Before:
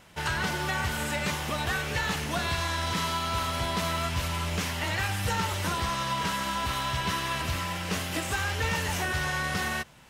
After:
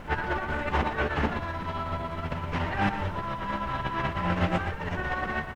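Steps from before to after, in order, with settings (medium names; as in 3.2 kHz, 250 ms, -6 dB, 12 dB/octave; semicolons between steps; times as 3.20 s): low-pass 1.6 kHz 12 dB/octave; hum notches 50/100/150 Hz; compressor with a negative ratio -36 dBFS, ratio -0.5; added noise brown -50 dBFS; granular stretch 0.55×, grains 125 ms; delay 118 ms -9.5 dB; trim +8.5 dB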